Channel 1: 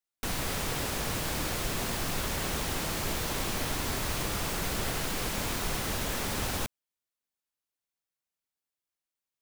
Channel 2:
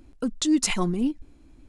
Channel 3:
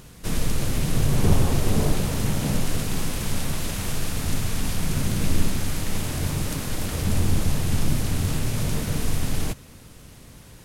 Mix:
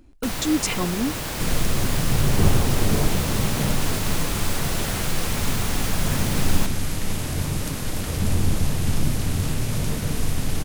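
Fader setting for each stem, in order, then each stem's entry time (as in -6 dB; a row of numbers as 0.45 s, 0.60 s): +3.0 dB, -0.5 dB, +0.5 dB; 0.00 s, 0.00 s, 1.15 s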